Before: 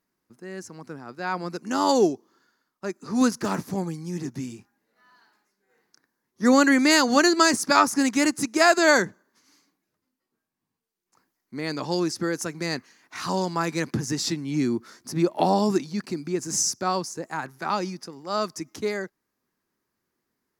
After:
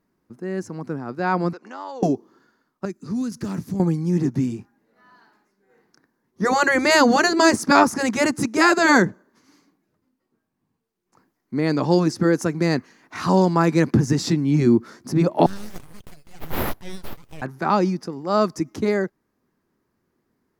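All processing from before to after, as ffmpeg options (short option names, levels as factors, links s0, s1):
-filter_complex "[0:a]asettb=1/sr,asplit=3[s0][s1][s2];[s0]atrim=end=1.534[s3];[s1]atrim=start=1.53:end=2.03,asetpts=PTS-STARTPTS,afade=t=in:d=0.004:c=qsin,afade=t=out:st=0.496:d=0.004:c=qsin,acompressor=threshold=0.0224:ratio=10:attack=3.2:release=140:knee=1:detection=peak,highpass=640,lowpass=4400[s4];[s2]atrim=start=2.026[s5];[s3][s4]acrossfade=d=0.004:c1=hsin:c2=qsin[s6];[s6][s5]acrossfade=d=0.004:c1=qsin:c2=hsin,asettb=1/sr,asplit=3[s7][s8][s9];[s7]atrim=end=2.854[s10];[s8]atrim=start=2.85:end=3.8,asetpts=PTS-STARTPTS,afade=t=in:d=0.004:c=qsin,afade=t=out:st=0.946:d=0.004:c=qsin,equalizer=f=760:t=o:w=2.9:g=-14,acompressor=threshold=0.0251:ratio=10:attack=3.2:release=140:knee=1:detection=peak[s11];[s9]atrim=start=3.796[s12];[s10][s11]acrossfade=d=0.004:c1=hsin:c2=qsin[s13];[s13][s12]acrossfade=d=0.004:c1=qsin:c2=hsin,asettb=1/sr,asplit=3[s14][s15][s16];[s14]atrim=end=15.464[s17];[s15]atrim=start=15.46:end=17.42,asetpts=PTS-STARTPTS,afade=t=in:d=0.004:c=qsin,afade=t=out:st=1.956:d=0.004:c=qsin,aderivative,aeval=exprs='abs(val(0))':c=same[s18];[s16]atrim=start=17.416[s19];[s17][s18]acrossfade=d=0.004:c1=hsin:c2=qsin[s20];[s20][s19]acrossfade=d=0.004:c1=qsin:c2=hsin,highshelf=f=2300:g=-9,afftfilt=real='re*lt(hypot(re,im),0.708)':imag='im*lt(hypot(re,im),0.708)':win_size=1024:overlap=0.75,lowshelf=f=490:g=5.5,volume=2.11"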